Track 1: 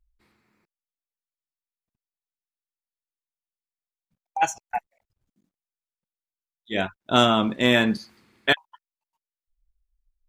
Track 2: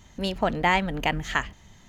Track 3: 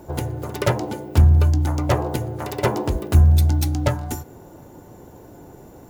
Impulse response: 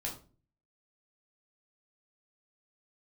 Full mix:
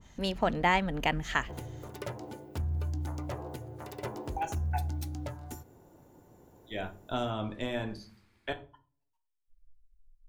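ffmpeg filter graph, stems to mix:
-filter_complex "[0:a]asubboost=boost=8.5:cutoff=62,acrossover=split=420|950[s0][s1][s2];[s0]acompressor=threshold=0.0501:ratio=4[s3];[s1]acompressor=threshold=0.0398:ratio=4[s4];[s2]acompressor=threshold=0.02:ratio=4[s5];[s3][s4][s5]amix=inputs=3:normalize=0,volume=0.299,asplit=2[s6][s7];[s7]volume=0.531[s8];[1:a]adynamicequalizer=threshold=0.02:dfrequency=1600:dqfactor=0.7:tfrequency=1600:tqfactor=0.7:attack=5:release=100:ratio=0.375:range=2:mode=cutabove:tftype=highshelf,volume=0.668[s9];[2:a]alimiter=limit=0.266:level=0:latency=1:release=190,adelay=1400,volume=0.188[s10];[3:a]atrim=start_sample=2205[s11];[s8][s11]afir=irnorm=-1:irlink=0[s12];[s6][s9][s10][s12]amix=inputs=4:normalize=0,bandreject=f=100.7:t=h:w=4,bandreject=f=201.4:t=h:w=4"

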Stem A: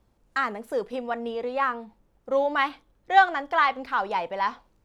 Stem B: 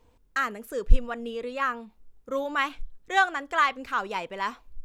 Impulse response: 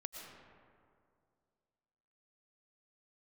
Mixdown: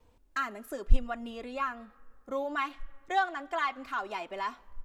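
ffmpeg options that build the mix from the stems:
-filter_complex "[0:a]volume=0.282,asplit=2[s0][s1];[1:a]adelay=2.9,volume=0.708,asplit=2[s2][s3];[s3]volume=0.075[s4];[s1]apad=whole_len=213959[s5];[s2][s5]sidechaincompress=threshold=0.0141:ratio=8:attack=16:release=483[s6];[2:a]atrim=start_sample=2205[s7];[s4][s7]afir=irnorm=-1:irlink=0[s8];[s0][s6][s8]amix=inputs=3:normalize=0"

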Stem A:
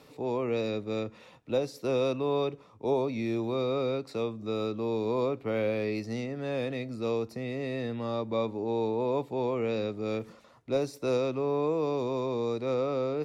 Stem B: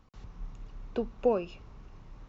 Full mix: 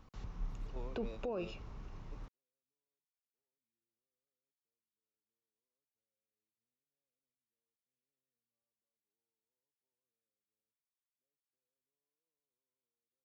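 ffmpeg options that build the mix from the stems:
-filter_complex "[0:a]alimiter=level_in=1.12:limit=0.0631:level=0:latency=1,volume=0.891,adelay=500,volume=0.188[s0];[1:a]alimiter=limit=0.0944:level=0:latency=1:release=370,volume=1.12,asplit=2[s1][s2];[s2]apad=whole_len=606320[s3];[s0][s3]sidechaingate=range=0.002:threshold=0.00794:ratio=16:detection=peak[s4];[s4][s1]amix=inputs=2:normalize=0,alimiter=level_in=2.11:limit=0.0631:level=0:latency=1:release=17,volume=0.473"

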